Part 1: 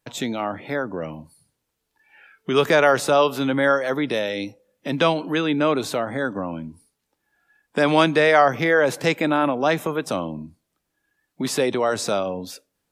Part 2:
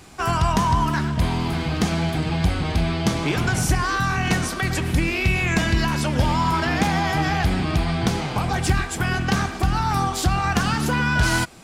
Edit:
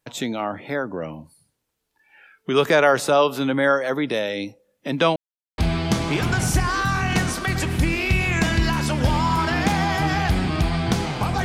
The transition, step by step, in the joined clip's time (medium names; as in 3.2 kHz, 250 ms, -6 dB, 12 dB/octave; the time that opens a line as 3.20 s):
part 1
5.16–5.58 s: mute
5.58 s: go over to part 2 from 2.73 s